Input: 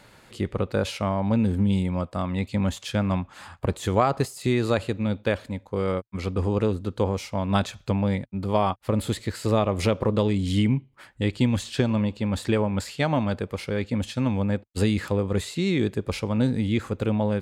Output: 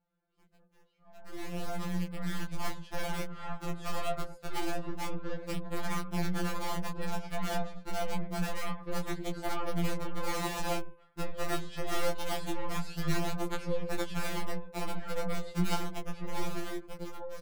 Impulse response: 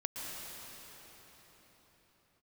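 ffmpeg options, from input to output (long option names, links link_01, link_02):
-filter_complex "[0:a]acompressor=threshold=-33dB:ratio=6,asettb=1/sr,asplit=3[link_01][link_02][link_03];[link_01]atrim=end=12.124[link_04];[link_02]atrim=start=12.12:end=14.64,asetpts=PTS-STARTPTS,afade=type=in:duration=0.004:curve=qsin,afade=type=out:start_time=2.516:duration=0.004:curve=qsin,highshelf=frequency=4300:gain=9.5[link_05];[link_03]atrim=start=14.636[link_06];[link_04][link_05]acrossfade=duration=0.004:curve1=hsin:curve2=qsin[link_07];[link_07][link_06]acrossfade=duration=0.004:curve1=qsin:curve2=hsin,alimiter=level_in=4.5dB:limit=-24dB:level=0:latency=1:release=93,volume=-4.5dB,firequalizer=gain_entry='entry(110,0);entry(210,-4);entry(1300,-6);entry(2000,-15);entry(7600,-25)':delay=0.05:min_phase=1,aecho=1:1:105|210|315|420:0.282|0.093|0.0307|0.0101,aeval=exprs='(mod(47.3*val(0)+1,2)-1)/47.3':channel_layout=same,dynaudnorm=framelen=490:gausssize=9:maxgain=15.5dB,aeval=exprs='0.133*(cos(1*acos(clip(val(0)/0.133,-1,1)))-cos(1*PI/2))+0.0299*(cos(6*acos(clip(val(0)/0.133,-1,1)))-cos(6*PI/2))':channel_layout=same,flanger=delay=16:depth=3:speed=0.13,agate=range=-16dB:threshold=-38dB:ratio=16:detection=peak,bandreject=frequency=256.7:width_type=h:width=4,bandreject=frequency=513.4:width_type=h:width=4,bandreject=frequency=770.1:width_type=h:width=4,bandreject=frequency=1026.8:width_type=h:width=4,bandreject=frequency=1283.5:width_type=h:width=4,bandreject=frequency=1540.2:width_type=h:width=4,bandreject=frequency=1796.9:width_type=h:width=4,bandreject=frequency=2053.6:width_type=h:width=4,bandreject=frequency=2310.3:width_type=h:width=4,bandreject=frequency=2567:width_type=h:width=4,bandreject=frequency=2823.7:width_type=h:width=4,bandreject=frequency=3080.4:width_type=h:width=4,bandreject=frequency=3337.1:width_type=h:width=4,bandreject=frequency=3593.8:width_type=h:width=4,bandreject=frequency=3850.5:width_type=h:width=4,bandreject=frequency=4107.2:width_type=h:width=4,bandreject=frequency=4363.9:width_type=h:width=4,bandreject=frequency=4620.6:width_type=h:width=4,bandreject=frequency=4877.3:width_type=h:width=4,bandreject=frequency=5134:width_type=h:width=4,bandreject=frequency=5390.7:width_type=h:width=4,bandreject=frequency=5647.4:width_type=h:width=4,bandreject=frequency=5904.1:width_type=h:width=4,bandreject=frequency=6160.8:width_type=h:width=4,bandreject=frequency=6417.5:width_type=h:width=4,bandreject=frequency=6674.2:width_type=h:width=4,bandreject=frequency=6930.9:width_type=h:width=4,bandreject=frequency=7187.6:width_type=h:width=4,bandreject=frequency=7444.3:width_type=h:width=4,bandreject=frequency=7701:width_type=h:width=4,bandreject=frequency=7957.7:width_type=h:width=4,bandreject=frequency=8214.4:width_type=h:width=4,bandreject=frequency=8471.1:width_type=h:width=4,bandreject=frequency=8727.8:width_type=h:width=4,bandreject=frequency=8984.5:width_type=h:width=4,bandreject=frequency=9241.2:width_type=h:width=4,bandreject=frequency=9497.9:width_type=h:width=4,bandreject=frequency=9754.6:width_type=h:width=4,bandreject=frequency=10011.3:width_type=h:width=4,afftfilt=real='re*2.83*eq(mod(b,8),0)':imag='im*2.83*eq(mod(b,8),0)':win_size=2048:overlap=0.75,volume=-3dB"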